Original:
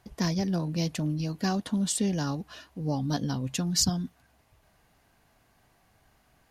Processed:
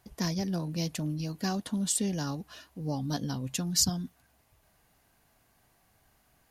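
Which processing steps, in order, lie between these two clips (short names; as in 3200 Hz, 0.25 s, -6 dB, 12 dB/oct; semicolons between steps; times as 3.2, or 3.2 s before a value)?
high shelf 8200 Hz +10 dB; gain -3.5 dB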